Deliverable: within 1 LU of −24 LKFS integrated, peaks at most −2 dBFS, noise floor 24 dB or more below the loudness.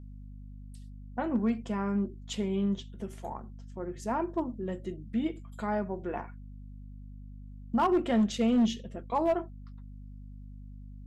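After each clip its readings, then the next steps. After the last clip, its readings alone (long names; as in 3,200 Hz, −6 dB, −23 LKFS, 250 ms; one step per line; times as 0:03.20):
share of clipped samples 0.6%; peaks flattened at −20.0 dBFS; mains hum 50 Hz; hum harmonics up to 250 Hz; level of the hum −41 dBFS; integrated loudness −31.5 LKFS; sample peak −20.0 dBFS; target loudness −24.0 LKFS
→ clipped peaks rebuilt −20 dBFS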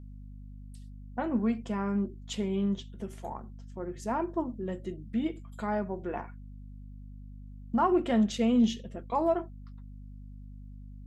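share of clipped samples 0.0%; mains hum 50 Hz; hum harmonics up to 250 Hz; level of the hum −41 dBFS
→ mains-hum notches 50/100/150/200/250 Hz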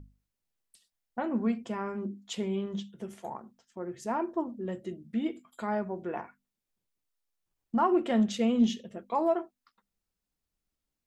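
mains hum none found; integrated loudness −31.5 LKFS; sample peak −15.0 dBFS; target loudness −24.0 LKFS
→ level +7.5 dB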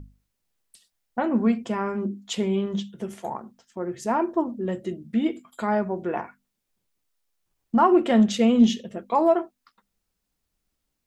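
integrated loudness −24.0 LKFS; sample peak −7.5 dBFS; background noise floor −80 dBFS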